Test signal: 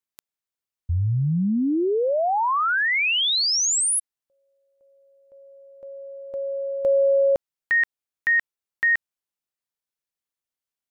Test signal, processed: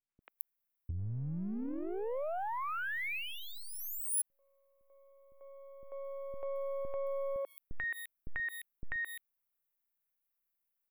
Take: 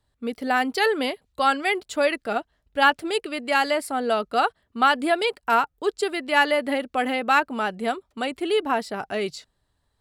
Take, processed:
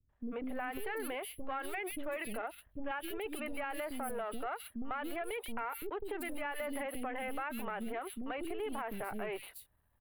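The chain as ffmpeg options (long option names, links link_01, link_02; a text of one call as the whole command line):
ffmpeg -i in.wav -filter_complex "[0:a]aeval=exprs='if(lt(val(0),0),0.447*val(0),val(0))':channel_layout=same,acrossover=split=330|3600[link_01][link_02][link_03];[link_02]adelay=90[link_04];[link_03]adelay=220[link_05];[link_01][link_04][link_05]amix=inputs=3:normalize=0,acompressor=threshold=-35dB:ratio=8:attack=2.8:release=89:knee=6:detection=peak,aexciter=amount=8.3:drive=4.7:freq=10000,firequalizer=gain_entry='entry(2500,0);entry(5100,-24);entry(9700,-9)':delay=0.05:min_phase=1" out.wav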